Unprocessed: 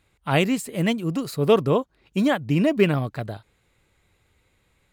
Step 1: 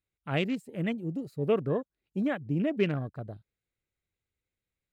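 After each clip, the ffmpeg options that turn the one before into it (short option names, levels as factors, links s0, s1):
-af "afwtdn=0.0224,equalizer=f=950:t=o:w=0.67:g=-7,volume=0.398"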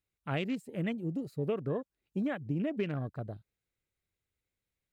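-af "acompressor=threshold=0.0355:ratio=6"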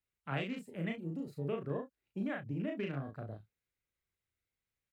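-filter_complex "[0:a]aecho=1:1:36|64:0.708|0.158,acrossover=split=260|470|2200[s0][s1][s2][s3];[s2]crystalizer=i=6:c=0[s4];[s0][s1][s4][s3]amix=inputs=4:normalize=0,volume=0.473"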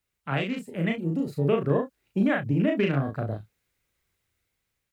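-af "dynaudnorm=f=400:g=5:m=1.78,volume=2.82"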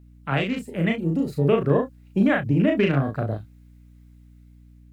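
-af "aeval=exprs='val(0)+0.00251*(sin(2*PI*60*n/s)+sin(2*PI*2*60*n/s)/2+sin(2*PI*3*60*n/s)/3+sin(2*PI*4*60*n/s)/4+sin(2*PI*5*60*n/s)/5)':c=same,volume=1.58"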